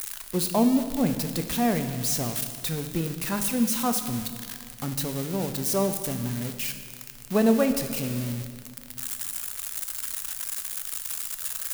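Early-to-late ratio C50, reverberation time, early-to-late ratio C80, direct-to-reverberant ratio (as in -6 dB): 9.0 dB, 2.0 s, 10.0 dB, 7.0 dB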